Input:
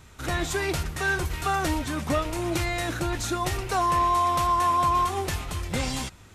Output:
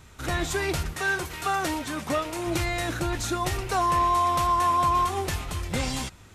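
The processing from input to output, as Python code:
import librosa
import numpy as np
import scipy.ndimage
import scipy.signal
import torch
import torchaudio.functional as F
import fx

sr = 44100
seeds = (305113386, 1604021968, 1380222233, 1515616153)

y = fx.highpass(x, sr, hz=240.0, slope=6, at=(0.93, 2.47))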